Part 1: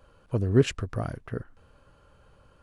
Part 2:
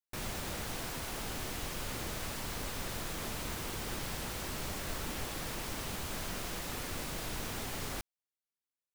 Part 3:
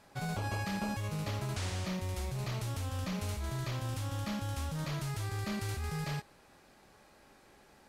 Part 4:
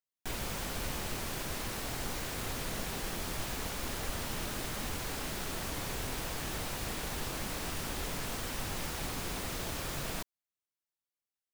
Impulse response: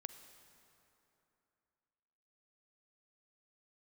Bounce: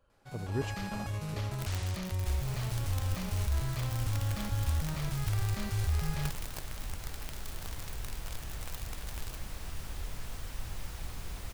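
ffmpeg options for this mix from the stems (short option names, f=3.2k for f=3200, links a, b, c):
-filter_complex "[0:a]volume=-13.5dB[a];[1:a]acrusher=bits=4:mix=0:aa=0.000001,adelay=1350,volume=-3dB[b];[2:a]aeval=exprs='clip(val(0),-1,0.0224)':c=same,dynaudnorm=f=170:g=5:m=10dB,adelay=100,volume=-11dB[c];[3:a]adelay=2000,volume=-9dB[d];[a][b][c][d]amix=inputs=4:normalize=0,asubboost=boost=4.5:cutoff=110"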